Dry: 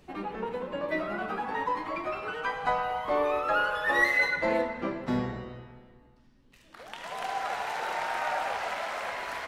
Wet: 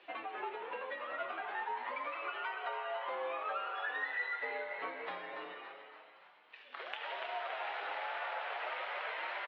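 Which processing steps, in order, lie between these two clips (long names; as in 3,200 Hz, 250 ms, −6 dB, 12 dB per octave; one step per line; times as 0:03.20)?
spectral tilt +3 dB per octave
downward compressor 5 to 1, threshold −41 dBFS, peak gain reduction 21.5 dB
flanger 0.32 Hz, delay 4.6 ms, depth 6.2 ms, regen +44%
single-sideband voice off tune −65 Hz 470–3,400 Hz
echo with shifted repeats 284 ms, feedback 54%, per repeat +99 Hz, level −9.5 dB
level +6.5 dB
AAC 48 kbit/s 48,000 Hz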